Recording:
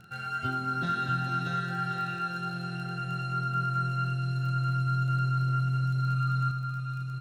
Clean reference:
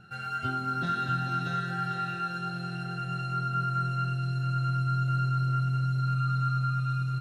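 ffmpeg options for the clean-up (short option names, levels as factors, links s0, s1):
-af "adeclick=t=4,asetnsamples=n=441:p=0,asendcmd='6.51 volume volume 5dB',volume=1"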